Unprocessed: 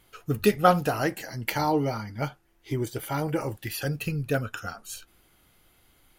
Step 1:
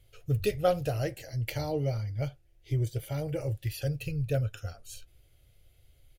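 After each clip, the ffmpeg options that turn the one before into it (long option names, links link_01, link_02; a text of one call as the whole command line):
ffmpeg -i in.wav -af "firequalizer=gain_entry='entry(120,0);entry(190,-21);entry(560,-7);entry(920,-26);entry(2300,-13);entry(3500,-12);entry(14000,-15)':delay=0.05:min_phase=1,volume=6dB" out.wav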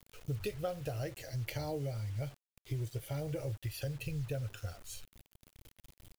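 ffmpeg -i in.wav -af "acompressor=threshold=-33dB:ratio=5,acrusher=bits=8:mix=0:aa=0.000001,volume=-1.5dB" out.wav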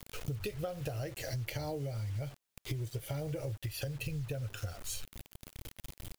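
ffmpeg -i in.wav -af "acompressor=threshold=-47dB:ratio=6,volume=11.5dB" out.wav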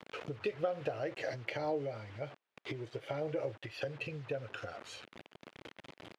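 ffmpeg -i in.wav -af "highpass=300,lowpass=2400,volume=5.5dB" out.wav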